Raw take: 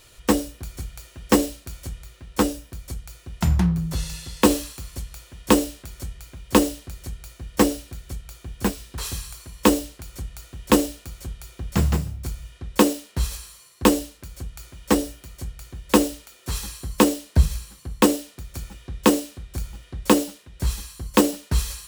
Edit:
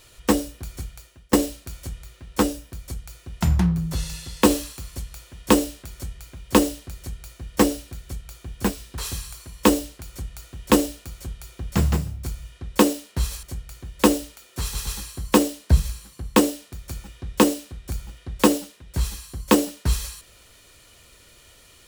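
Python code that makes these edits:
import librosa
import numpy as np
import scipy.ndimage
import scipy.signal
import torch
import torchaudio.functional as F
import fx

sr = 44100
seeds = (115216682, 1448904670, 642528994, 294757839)

y = fx.edit(x, sr, fx.fade_out_to(start_s=0.81, length_s=0.52, floor_db=-22.0),
    fx.cut(start_s=13.43, length_s=1.9),
    fx.stutter(start_s=16.53, slice_s=0.12, count=3), tone=tone)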